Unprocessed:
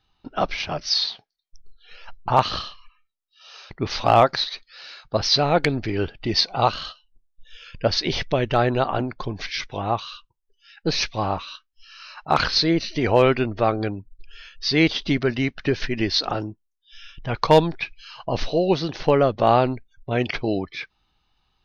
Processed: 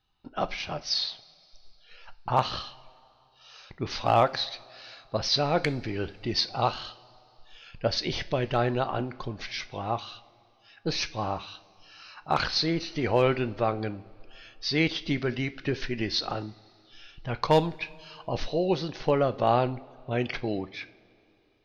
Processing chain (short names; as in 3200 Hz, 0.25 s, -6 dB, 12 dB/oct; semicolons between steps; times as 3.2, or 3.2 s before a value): two-slope reverb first 0.36 s, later 3 s, from -19 dB, DRR 11.5 dB; gain -6.5 dB